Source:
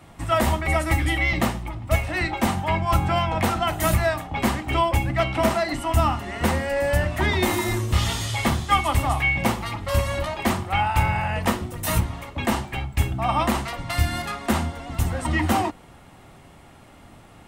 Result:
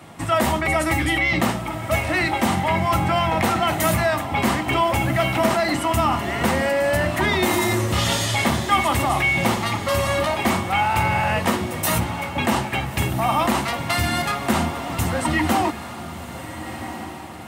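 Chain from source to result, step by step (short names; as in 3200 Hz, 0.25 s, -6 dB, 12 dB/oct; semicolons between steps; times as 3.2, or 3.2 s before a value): HPF 120 Hz 12 dB/oct; in parallel at -2.5 dB: negative-ratio compressor -27 dBFS; on the sum: diffused feedback echo 1.394 s, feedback 42%, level -11.5 dB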